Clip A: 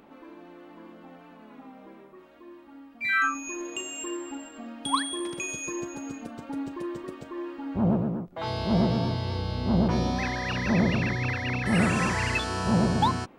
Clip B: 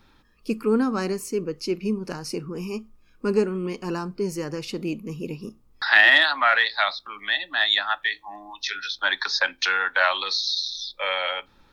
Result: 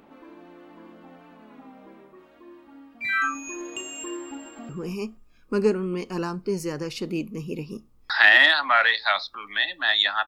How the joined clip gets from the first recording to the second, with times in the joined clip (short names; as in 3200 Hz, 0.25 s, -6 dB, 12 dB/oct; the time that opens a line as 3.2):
clip A
4.21–4.69 echo throw 0.24 s, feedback 20%, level -9 dB
4.69 switch to clip B from 2.41 s